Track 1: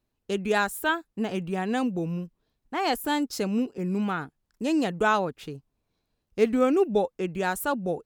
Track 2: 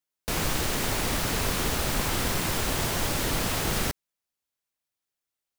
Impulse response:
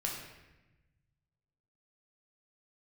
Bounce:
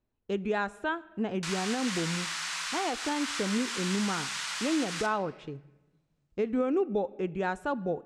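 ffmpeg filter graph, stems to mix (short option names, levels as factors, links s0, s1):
-filter_complex "[0:a]aemphasis=mode=reproduction:type=75kf,bandreject=f=4600:w=12,volume=0.708,asplit=2[s0][s1];[s1]volume=0.106[s2];[1:a]highpass=f=1100:w=0.5412,highpass=f=1100:w=1.3066,adelay=1150,volume=0.473,asplit=2[s3][s4];[s4]volume=0.596[s5];[2:a]atrim=start_sample=2205[s6];[s2][s5]amix=inputs=2:normalize=0[s7];[s7][s6]afir=irnorm=-1:irlink=0[s8];[s0][s3][s8]amix=inputs=3:normalize=0,lowpass=f=8300:w=0.5412,lowpass=f=8300:w=1.3066,alimiter=limit=0.106:level=0:latency=1:release=174"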